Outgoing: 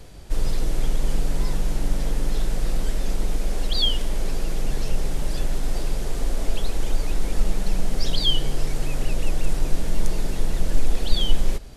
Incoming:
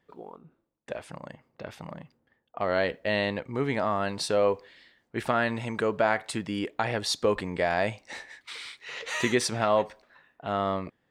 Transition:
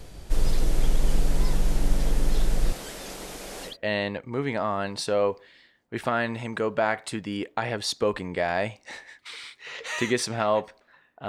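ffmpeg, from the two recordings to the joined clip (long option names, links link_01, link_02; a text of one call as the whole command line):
ffmpeg -i cue0.wav -i cue1.wav -filter_complex "[0:a]asettb=1/sr,asplit=3[link_01][link_02][link_03];[link_01]atrim=end=2.724[link_04];[link_02]atrim=start=2.72:end=3.77,asetpts=PTS-STARTPTS,afade=type=in:duration=0.004:curve=qsin,afade=type=out:start_time=1.046:duration=0.004:curve=qsin,highpass=frequency=580:poles=1[link_05];[link_03]atrim=start=3.766[link_06];[link_04][link_05]acrossfade=duration=0.004:curve1=hsin:curve2=qsin[link_07];[link_07][link_06]acrossfade=duration=0.004:curve1=qsin:curve2=hsin,apad=whole_dur=11.28,atrim=end=11.28,atrim=end=3.77,asetpts=PTS-STARTPTS[link_08];[1:a]atrim=start=2.85:end=10.5,asetpts=PTS-STARTPTS[link_09];[link_08][link_09]acrossfade=duration=0.14:curve1=tri:curve2=tri" out.wav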